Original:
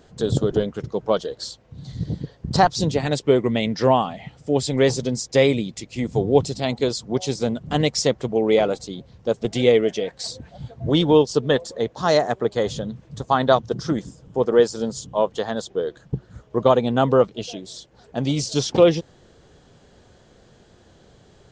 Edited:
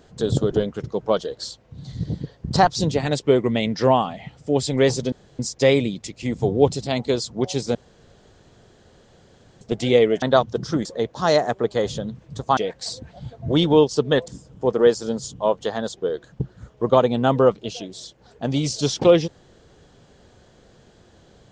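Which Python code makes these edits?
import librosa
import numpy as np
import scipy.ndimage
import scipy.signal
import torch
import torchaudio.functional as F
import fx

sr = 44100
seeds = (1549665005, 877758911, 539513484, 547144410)

y = fx.edit(x, sr, fx.insert_room_tone(at_s=5.12, length_s=0.27),
    fx.room_tone_fill(start_s=7.48, length_s=1.86),
    fx.swap(start_s=9.95, length_s=1.71, other_s=13.38, other_length_s=0.63), tone=tone)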